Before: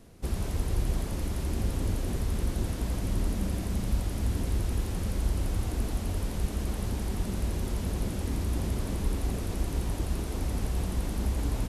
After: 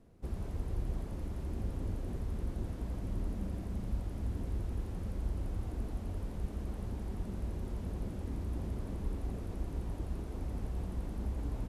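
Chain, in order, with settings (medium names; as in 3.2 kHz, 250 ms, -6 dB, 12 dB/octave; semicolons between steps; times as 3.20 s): treble shelf 2 kHz -12 dB; trim -7.5 dB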